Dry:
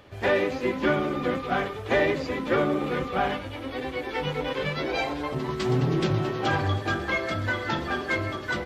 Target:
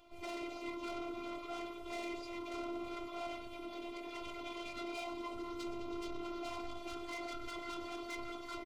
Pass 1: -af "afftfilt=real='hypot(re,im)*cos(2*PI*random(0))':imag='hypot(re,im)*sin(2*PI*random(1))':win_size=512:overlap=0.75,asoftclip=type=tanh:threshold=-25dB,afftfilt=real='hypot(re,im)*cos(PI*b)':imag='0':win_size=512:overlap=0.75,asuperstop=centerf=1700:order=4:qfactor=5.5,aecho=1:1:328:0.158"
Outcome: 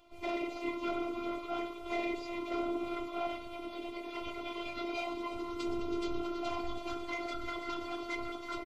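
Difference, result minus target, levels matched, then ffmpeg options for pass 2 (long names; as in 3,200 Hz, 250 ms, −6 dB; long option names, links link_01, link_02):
soft clipping: distortion −10 dB; echo-to-direct +9.5 dB
-af "afftfilt=real='hypot(re,im)*cos(2*PI*random(0))':imag='hypot(re,im)*sin(2*PI*random(1))':win_size=512:overlap=0.75,asoftclip=type=tanh:threshold=-36.5dB,afftfilt=real='hypot(re,im)*cos(PI*b)':imag='0':win_size=512:overlap=0.75,asuperstop=centerf=1700:order=4:qfactor=5.5,aecho=1:1:328:0.0531"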